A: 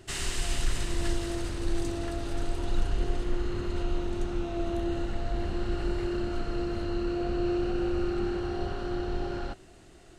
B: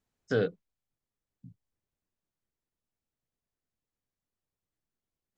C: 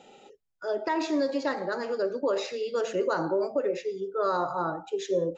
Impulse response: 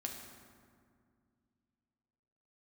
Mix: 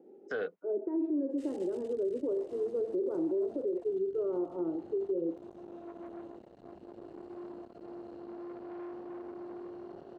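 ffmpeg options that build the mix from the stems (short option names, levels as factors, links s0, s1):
-filter_complex "[0:a]afwtdn=0.0355,asoftclip=type=tanh:threshold=0.0251,adelay=1300,volume=0.473[s0];[1:a]acrossover=split=450 2500:gain=0.224 1 0.158[s1][s2][s3];[s1][s2][s3]amix=inputs=3:normalize=0,volume=1.26[s4];[2:a]lowpass=f=350:t=q:w=4.3,volume=0.631[s5];[s0][s4][s5]amix=inputs=3:normalize=0,highpass=250,alimiter=level_in=1.19:limit=0.0631:level=0:latency=1:release=84,volume=0.841"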